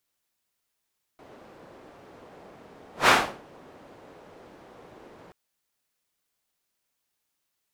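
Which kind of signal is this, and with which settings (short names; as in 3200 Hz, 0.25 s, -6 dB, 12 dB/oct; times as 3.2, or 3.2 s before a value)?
whoosh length 4.13 s, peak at 1.89, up 0.14 s, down 0.37 s, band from 510 Hz, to 1400 Hz, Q 0.89, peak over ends 33 dB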